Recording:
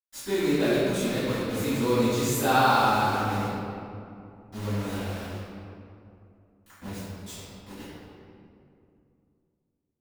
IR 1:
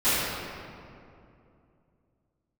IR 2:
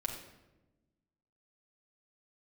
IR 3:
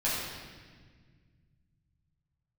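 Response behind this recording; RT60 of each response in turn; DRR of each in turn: 1; 2.6, 1.1, 1.6 s; -19.0, -1.0, -9.5 dB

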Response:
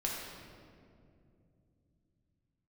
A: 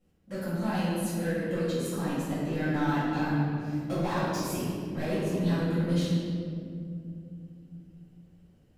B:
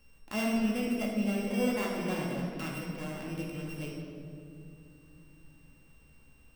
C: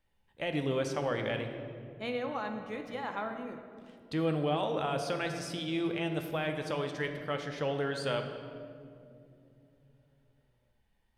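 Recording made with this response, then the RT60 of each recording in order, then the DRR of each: B; 2.5, 2.5, 2.6 s; -13.5, -3.5, 5.0 dB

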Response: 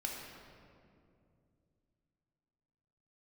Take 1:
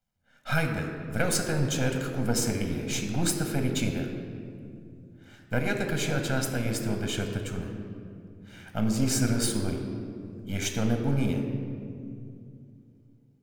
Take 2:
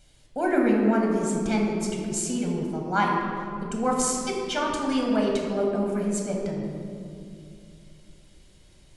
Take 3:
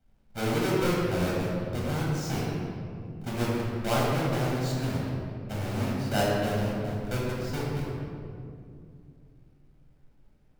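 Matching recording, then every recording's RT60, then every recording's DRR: 2; 2.5, 2.5, 2.4 s; 3.5, -1.5, -5.5 dB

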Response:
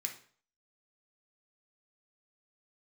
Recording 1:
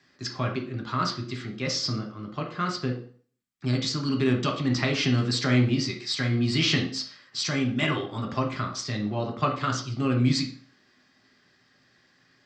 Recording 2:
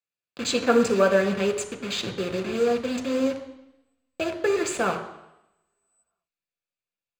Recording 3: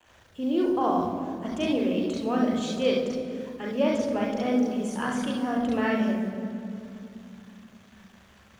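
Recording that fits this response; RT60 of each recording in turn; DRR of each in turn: 1; 0.50, 0.85, 2.7 s; 2.0, 5.0, -2.5 dB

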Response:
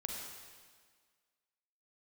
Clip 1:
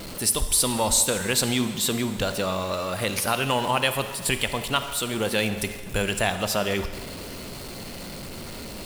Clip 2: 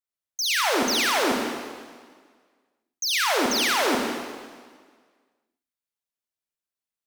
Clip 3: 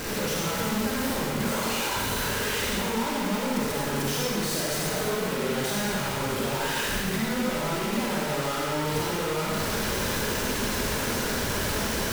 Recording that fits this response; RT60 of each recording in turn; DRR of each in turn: 2; 1.7, 1.7, 1.7 s; 9.5, 0.0, -5.0 dB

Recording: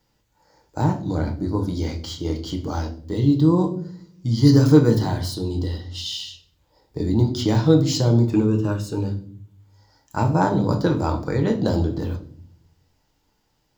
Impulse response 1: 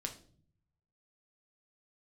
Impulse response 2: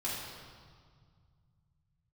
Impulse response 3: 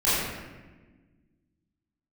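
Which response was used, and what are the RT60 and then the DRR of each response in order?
1; 0.50, 1.9, 1.3 s; 3.0, -8.0, -13.0 dB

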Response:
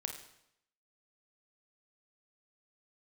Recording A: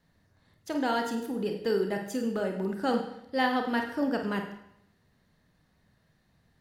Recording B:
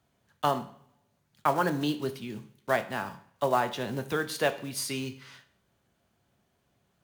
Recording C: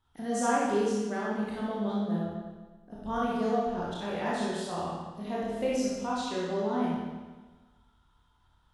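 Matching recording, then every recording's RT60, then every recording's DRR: A; 0.75, 0.50, 1.3 s; 3.5, 8.0, -7.0 dB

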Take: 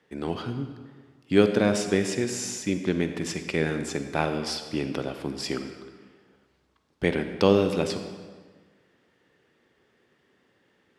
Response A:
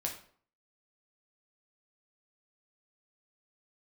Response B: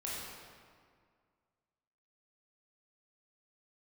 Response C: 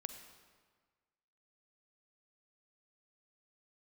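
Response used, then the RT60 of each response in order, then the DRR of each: C; 0.55, 2.0, 1.5 s; 0.0, -7.0, 8.0 dB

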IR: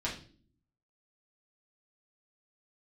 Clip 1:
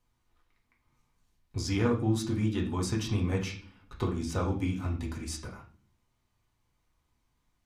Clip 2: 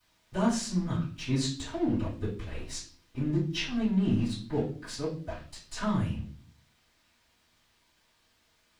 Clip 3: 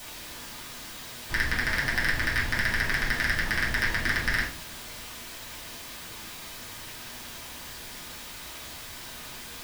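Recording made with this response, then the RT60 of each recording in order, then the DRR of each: 3; not exponential, not exponential, not exponential; -1.5, -16.5, -6.5 dB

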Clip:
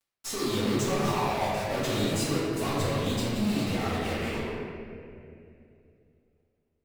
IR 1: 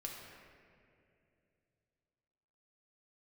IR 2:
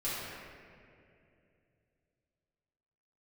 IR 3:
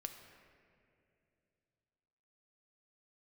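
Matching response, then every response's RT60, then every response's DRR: 2; 2.6, 2.6, 2.6 s; -1.5, -11.0, 5.0 dB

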